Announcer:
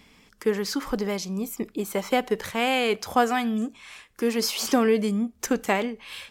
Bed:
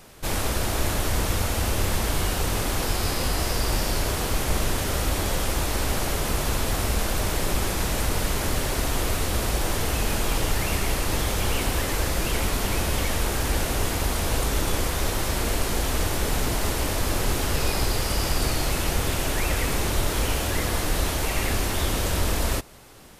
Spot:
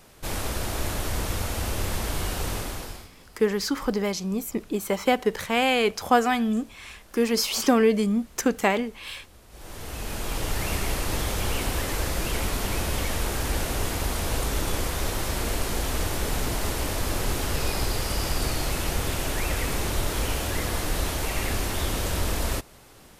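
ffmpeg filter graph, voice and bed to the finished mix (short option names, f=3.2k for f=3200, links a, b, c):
-filter_complex "[0:a]adelay=2950,volume=1.5dB[a];[1:a]volume=20.5dB,afade=t=out:st=2.5:d=0.59:silence=0.0707946,afade=t=in:st=9.49:d=1.19:silence=0.0595662[b];[a][b]amix=inputs=2:normalize=0"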